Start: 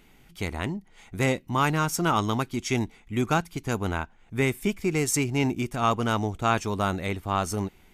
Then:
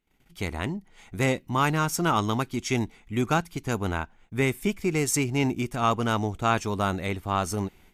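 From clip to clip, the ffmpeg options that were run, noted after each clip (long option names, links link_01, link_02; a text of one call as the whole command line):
ffmpeg -i in.wav -af "agate=range=-24dB:threshold=-53dB:ratio=16:detection=peak" out.wav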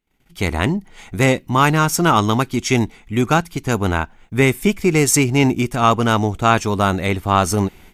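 ffmpeg -i in.wav -af "dynaudnorm=framelen=240:gausssize=3:maxgain=13dB" out.wav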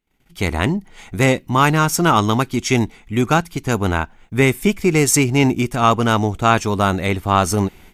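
ffmpeg -i in.wav -af anull out.wav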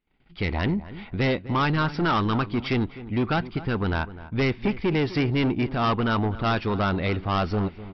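ffmpeg -i in.wav -filter_complex "[0:a]lowpass=3900,aresample=11025,asoftclip=type=tanh:threshold=-16dB,aresample=44100,asplit=2[link_01][link_02];[link_02]adelay=253,lowpass=frequency=1600:poles=1,volume=-15dB,asplit=2[link_03][link_04];[link_04]adelay=253,lowpass=frequency=1600:poles=1,volume=0.25,asplit=2[link_05][link_06];[link_06]adelay=253,lowpass=frequency=1600:poles=1,volume=0.25[link_07];[link_01][link_03][link_05][link_07]amix=inputs=4:normalize=0,volume=-2.5dB" out.wav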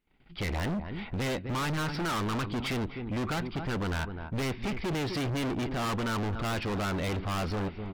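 ffmpeg -i in.wav -af "volume=30.5dB,asoftclip=hard,volume=-30.5dB,volume=1dB" out.wav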